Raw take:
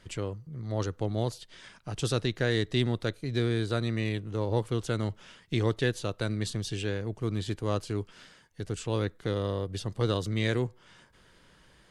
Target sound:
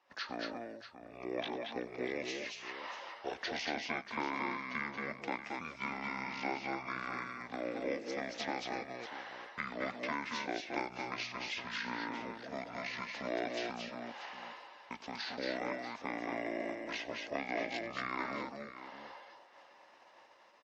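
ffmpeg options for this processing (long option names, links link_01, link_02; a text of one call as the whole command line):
ffmpeg -i in.wav -filter_complex "[0:a]acrossover=split=1200|2500[link_01][link_02][link_03];[link_01]acompressor=threshold=-32dB:ratio=4[link_04];[link_02]acompressor=threshold=-55dB:ratio=4[link_05];[link_03]acompressor=threshold=-45dB:ratio=4[link_06];[link_04][link_05][link_06]amix=inputs=3:normalize=0,highpass=frequency=940:width_type=q:width=1.6,agate=range=-17dB:threshold=-59dB:ratio=16:detection=peak,aecho=1:1:54|119|129|134|368:0.119|0.1|0.473|0.531|0.251,asetrate=25442,aresample=44100,volume=3.5dB" out.wav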